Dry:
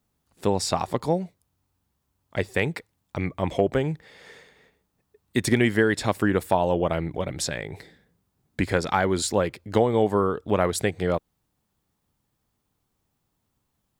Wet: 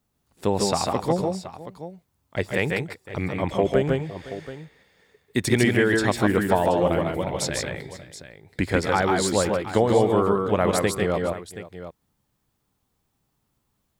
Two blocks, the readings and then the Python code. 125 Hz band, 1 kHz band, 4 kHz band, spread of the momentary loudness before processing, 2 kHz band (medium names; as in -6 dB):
+1.5 dB, +2.0 dB, +2.0 dB, 11 LU, +2.0 dB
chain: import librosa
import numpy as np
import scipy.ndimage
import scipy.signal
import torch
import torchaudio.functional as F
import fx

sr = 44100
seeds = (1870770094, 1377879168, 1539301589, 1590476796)

y = fx.echo_multitap(x, sr, ms=(139, 154, 508, 727), db=(-8.5, -3.5, -18.5, -13.5))